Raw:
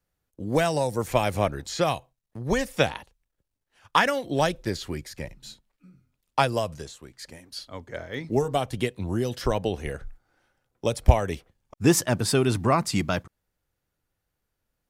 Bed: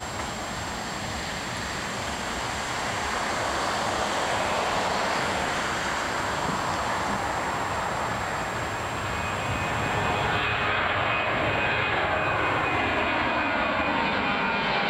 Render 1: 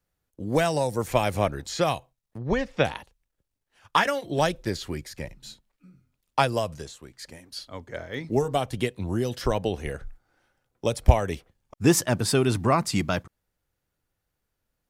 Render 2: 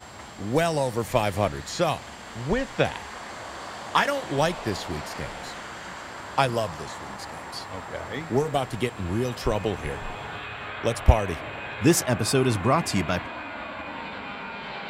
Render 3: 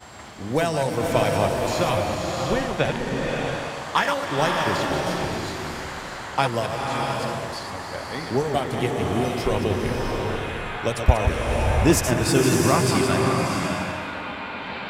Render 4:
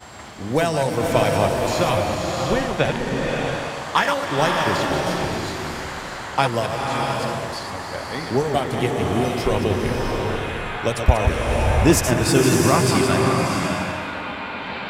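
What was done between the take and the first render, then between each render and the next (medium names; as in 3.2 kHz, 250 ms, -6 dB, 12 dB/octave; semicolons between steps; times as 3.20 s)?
2.38–2.85 s: distance through air 180 m; 3.97–4.38 s: comb of notches 250 Hz
add bed -10.5 dB
chunks repeated in reverse 119 ms, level -6.5 dB; swelling reverb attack 670 ms, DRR 0.5 dB
trim +2.5 dB; peak limiter -3 dBFS, peak gain reduction 1.5 dB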